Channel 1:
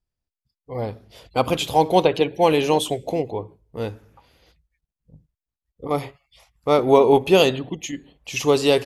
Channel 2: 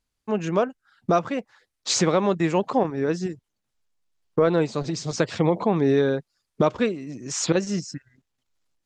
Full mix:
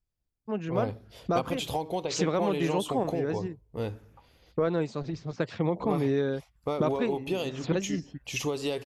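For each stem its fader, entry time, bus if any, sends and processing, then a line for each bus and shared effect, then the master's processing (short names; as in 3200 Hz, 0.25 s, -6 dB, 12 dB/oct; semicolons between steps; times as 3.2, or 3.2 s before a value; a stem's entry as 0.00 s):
-4.5 dB, 0.00 s, no send, compressor 16:1, threshold -23 dBFS, peak gain reduction 15 dB
-8.0 dB, 0.20 s, no send, low-pass opened by the level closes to 650 Hz, open at -17.5 dBFS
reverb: off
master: low shelf 220 Hz +3.5 dB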